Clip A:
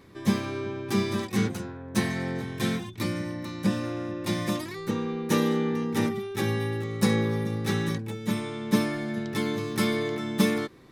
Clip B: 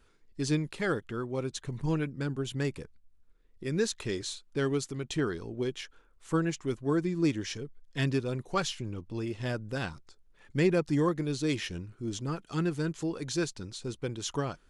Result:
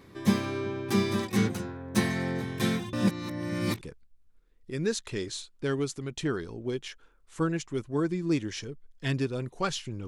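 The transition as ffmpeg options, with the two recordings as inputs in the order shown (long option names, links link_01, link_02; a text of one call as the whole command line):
ffmpeg -i cue0.wav -i cue1.wav -filter_complex "[0:a]apad=whole_dur=10.07,atrim=end=10.07,asplit=2[link_01][link_02];[link_01]atrim=end=2.932[link_03];[link_02]atrim=start=2.928:end=3.812,asetpts=PTS-STARTPTS,areverse[link_04];[1:a]atrim=start=2.738:end=9[link_05];[link_03][link_04]acrossfade=duration=0.004:curve1=hsin:curve2=hsin[link_06];[link_06][link_05]acrossfade=duration=0.004:curve1=hsin:curve2=hsin" out.wav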